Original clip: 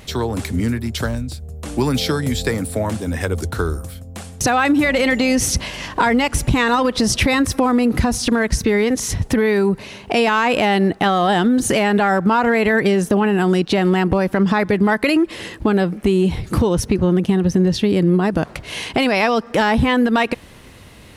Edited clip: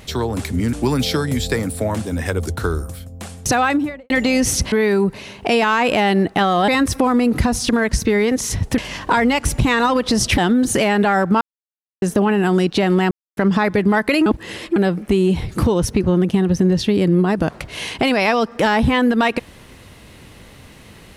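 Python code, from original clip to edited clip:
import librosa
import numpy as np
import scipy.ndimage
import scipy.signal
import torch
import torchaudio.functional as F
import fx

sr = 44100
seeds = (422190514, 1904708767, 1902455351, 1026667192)

y = fx.studio_fade_out(x, sr, start_s=4.55, length_s=0.5)
y = fx.edit(y, sr, fx.cut(start_s=0.73, length_s=0.95),
    fx.swap(start_s=5.67, length_s=1.6, other_s=9.37, other_length_s=1.96),
    fx.silence(start_s=12.36, length_s=0.61),
    fx.silence(start_s=14.06, length_s=0.26),
    fx.reverse_span(start_s=15.21, length_s=0.5), tone=tone)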